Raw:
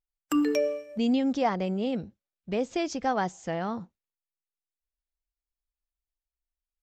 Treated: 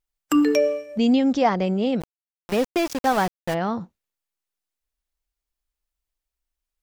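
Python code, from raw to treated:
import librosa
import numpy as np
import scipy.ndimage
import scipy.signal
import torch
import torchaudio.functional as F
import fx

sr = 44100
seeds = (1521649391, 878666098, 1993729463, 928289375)

y = fx.sample_gate(x, sr, floor_db=-32.5, at=(2.0, 3.53), fade=0.02)
y = y * librosa.db_to_amplitude(6.5)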